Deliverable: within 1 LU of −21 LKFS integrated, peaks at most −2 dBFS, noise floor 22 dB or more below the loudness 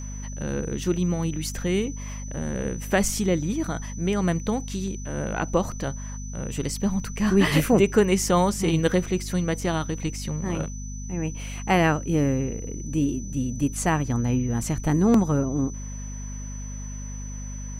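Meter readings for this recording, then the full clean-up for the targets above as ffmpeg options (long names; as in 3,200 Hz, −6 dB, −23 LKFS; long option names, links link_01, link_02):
mains hum 50 Hz; hum harmonics up to 250 Hz; level of the hum −32 dBFS; interfering tone 6,000 Hz; level of the tone −41 dBFS; integrated loudness −25.0 LKFS; sample peak −5.0 dBFS; target loudness −21.0 LKFS
→ -af "bandreject=frequency=50:width_type=h:width=4,bandreject=frequency=100:width_type=h:width=4,bandreject=frequency=150:width_type=h:width=4,bandreject=frequency=200:width_type=h:width=4,bandreject=frequency=250:width_type=h:width=4"
-af "bandreject=frequency=6000:width=30"
-af "volume=4dB,alimiter=limit=-2dB:level=0:latency=1"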